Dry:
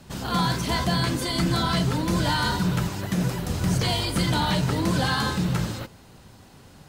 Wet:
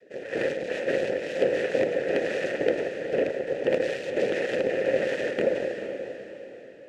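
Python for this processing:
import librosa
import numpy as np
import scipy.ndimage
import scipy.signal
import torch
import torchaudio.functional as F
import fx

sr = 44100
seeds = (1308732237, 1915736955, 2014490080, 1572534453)

p1 = fx.peak_eq(x, sr, hz=200.0, db=9.0, octaves=1.5)
p2 = fx.noise_vocoder(p1, sr, seeds[0], bands=3)
p3 = fx.cheby_harmonics(p2, sr, harmonics=(4, 6, 8), levels_db=(-8, -11, -12), full_scale_db=-5.0)
p4 = fx.vowel_filter(p3, sr, vowel='e')
p5 = p4 + fx.echo_diffused(p4, sr, ms=467, feedback_pct=41, wet_db=-8.5, dry=0)
y = F.gain(torch.from_numpy(p5), 2.0).numpy()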